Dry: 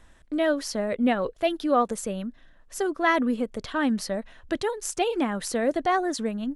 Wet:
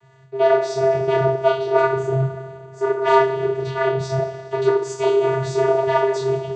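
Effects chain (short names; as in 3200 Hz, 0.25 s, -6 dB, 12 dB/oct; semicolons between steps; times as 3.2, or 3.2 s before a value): 1.82–2.98 resonant high shelf 1800 Hz -9 dB, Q 3; one-sided clip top -27.5 dBFS; two-slope reverb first 0.44 s, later 2.8 s, from -18 dB, DRR -9.5 dB; vocoder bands 16, square 133 Hz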